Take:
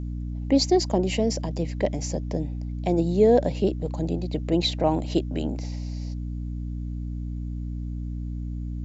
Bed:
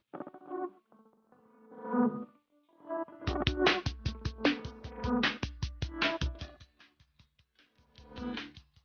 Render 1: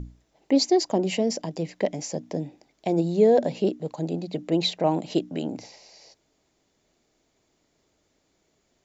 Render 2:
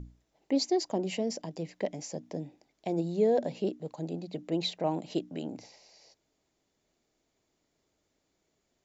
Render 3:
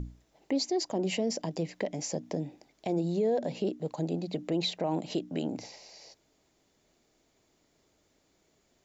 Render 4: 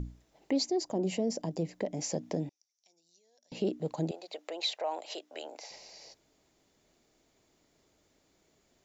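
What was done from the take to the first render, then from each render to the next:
hum notches 60/120/180/240/300 Hz
trim -7.5 dB
in parallel at +2 dB: compression, threshold -38 dBFS, peak gain reduction 16 dB; on the sum: peak limiter -21 dBFS, peak gain reduction 6.5 dB
0.66–1.97 s: peaking EQ 2.6 kHz -7.5 dB 2.6 oct; 2.49–3.52 s: band-pass filter 5.8 kHz, Q 11; 4.11–5.71 s: high-pass 540 Hz 24 dB/octave

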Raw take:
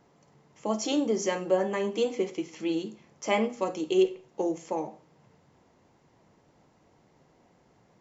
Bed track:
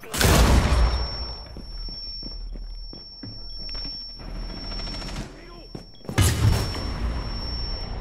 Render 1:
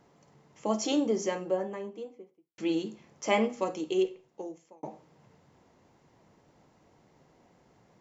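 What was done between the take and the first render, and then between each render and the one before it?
0.72–2.58 s: studio fade out; 3.45–4.83 s: fade out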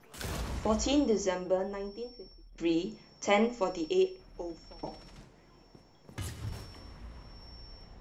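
add bed track -20 dB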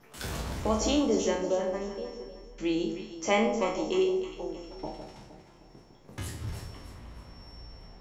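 spectral sustain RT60 0.47 s; echo whose repeats swap between lows and highs 155 ms, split 880 Hz, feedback 62%, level -6.5 dB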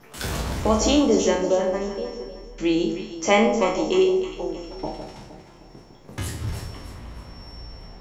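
trim +7.5 dB

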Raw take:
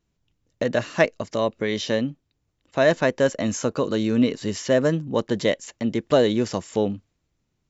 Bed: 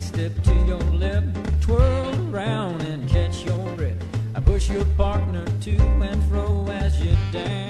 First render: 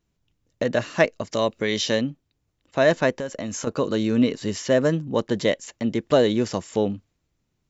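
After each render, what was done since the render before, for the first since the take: 1.32–2.01 s: treble shelf 2.9 kHz +7.5 dB; 3.11–3.67 s: compression, threshold -26 dBFS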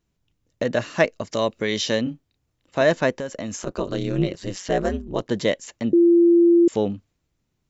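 2.03–2.82 s: doubling 32 ms -5 dB; 3.56–5.26 s: ring modulator 93 Hz; 5.93–6.68 s: bleep 342 Hz -11 dBFS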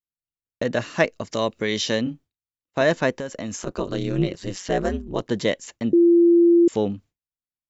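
expander -40 dBFS; peaking EQ 590 Hz -2.5 dB 0.32 oct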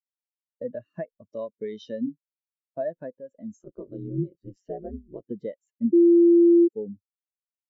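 compression 16:1, threshold -22 dBFS, peak gain reduction 10 dB; spectral contrast expander 2.5:1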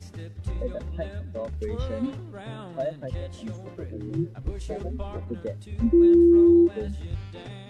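add bed -14 dB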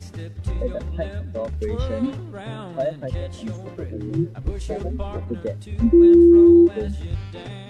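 trim +5 dB

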